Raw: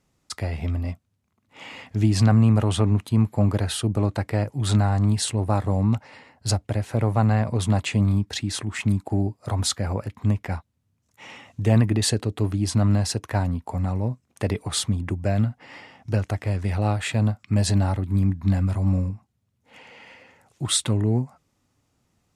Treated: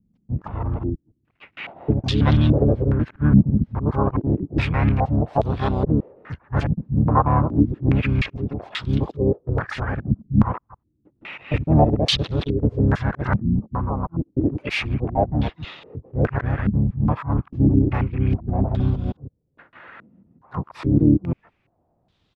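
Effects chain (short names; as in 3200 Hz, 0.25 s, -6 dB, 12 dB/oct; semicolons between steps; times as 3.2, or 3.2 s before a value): local time reversal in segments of 0.158 s; harmoniser -12 st -10 dB, -7 st -3 dB, +5 st -1 dB; stepped low-pass 2.4 Hz 210–3600 Hz; gain -3 dB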